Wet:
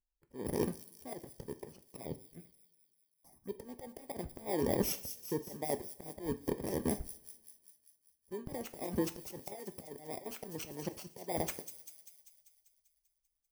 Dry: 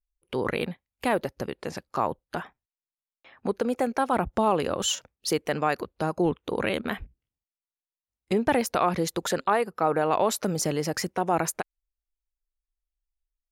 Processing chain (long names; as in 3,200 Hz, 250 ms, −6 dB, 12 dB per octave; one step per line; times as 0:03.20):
samples in bit-reversed order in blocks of 32 samples
tilt shelving filter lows +8.5 dB, about 870 Hz
harmonic and percussive parts rebalanced harmonic −16 dB
0:09.53–0:10.26: downward compressor, threshold −30 dBFS, peak gain reduction 8.5 dB
volume swells 366 ms
0:02.03–0:03.56: phaser swept by the level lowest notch 380 Hz, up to 1,500 Hz, full sweep at −42 dBFS
delay with a high-pass on its return 196 ms, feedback 62%, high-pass 5,000 Hz, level −6.5 dB
coupled-rooms reverb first 0.39 s, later 1.7 s, from −22 dB, DRR 9.5 dB